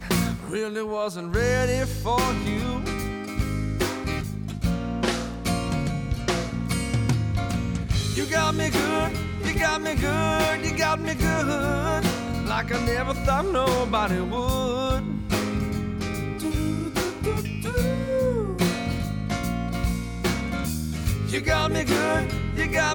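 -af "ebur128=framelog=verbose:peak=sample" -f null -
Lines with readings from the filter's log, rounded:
Integrated loudness:
  I:         -25.4 LUFS
  Threshold: -35.4 LUFS
Loudness range:
  LRA:         3.2 LU
  Threshold: -45.4 LUFS
  LRA low:   -27.1 LUFS
  LRA high:  -23.8 LUFS
Sample peak:
  Peak:      -12.5 dBFS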